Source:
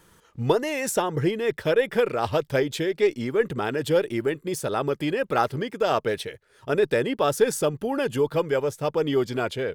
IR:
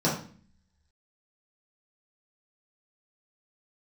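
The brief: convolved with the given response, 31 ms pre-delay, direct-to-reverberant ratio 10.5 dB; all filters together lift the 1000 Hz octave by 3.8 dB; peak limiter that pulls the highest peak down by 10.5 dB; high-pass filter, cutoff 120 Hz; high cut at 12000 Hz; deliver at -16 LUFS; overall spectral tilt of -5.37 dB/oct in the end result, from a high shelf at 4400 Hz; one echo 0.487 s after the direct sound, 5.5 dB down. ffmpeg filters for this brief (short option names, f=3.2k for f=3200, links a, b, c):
-filter_complex "[0:a]highpass=120,lowpass=12k,equalizer=f=1k:t=o:g=5.5,highshelf=f=4.4k:g=-6,alimiter=limit=-15dB:level=0:latency=1,aecho=1:1:487:0.531,asplit=2[a][b];[1:a]atrim=start_sample=2205,adelay=31[c];[b][c]afir=irnorm=-1:irlink=0,volume=-23.5dB[d];[a][d]amix=inputs=2:normalize=0,volume=8.5dB"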